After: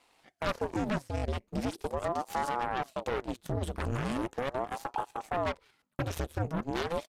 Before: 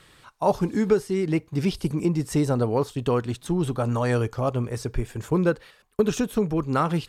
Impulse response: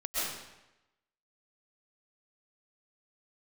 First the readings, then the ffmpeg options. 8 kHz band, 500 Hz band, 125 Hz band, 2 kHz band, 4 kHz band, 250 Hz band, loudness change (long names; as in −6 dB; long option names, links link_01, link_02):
−9.5 dB, −10.0 dB, −11.0 dB, −3.5 dB, −4.5 dB, −12.0 dB, −9.5 dB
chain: -filter_complex "[0:a]aeval=exprs='0.376*(cos(1*acos(clip(val(0)/0.376,-1,1)))-cos(1*PI/2))+0.075*(cos(7*acos(clip(val(0)/0.376,-1,1)))-cos(7*PI/2))+0.119*(cos(8*acos(clip(val(0)/0.376,-1,1)))-cos(8*PI/2))':channel_layout=same,asplit=2[link_01][link_02];[link_02]acompressor=threshold=-29dB:ratio=6,volume=-2dB[link_03];[link_01][link_03]amix=inputs=2:normalize=0,aresample=32000,aresample=44100,alimiter=limit=-13dB:level=0:latency=1:release=41,aeval=exprs='val(0)*sin(2*PI*460*n/s+460*0.85/0.4*sin(2*PI*0.4*n/s))':channel_layout=same,volume=-7dB"